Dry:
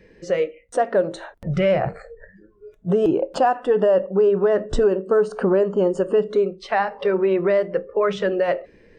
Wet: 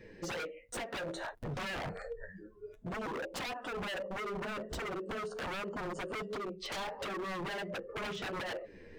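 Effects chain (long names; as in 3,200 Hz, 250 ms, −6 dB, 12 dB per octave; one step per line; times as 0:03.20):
downward compressor 4 to 1, threshold −28 dBFS, peak gain reduction 13 dB
flanger 1.4 Hz, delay 7.9 ms, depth 5.6 ms, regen −4%
wave folding −35 dBFS
level +1.5 dB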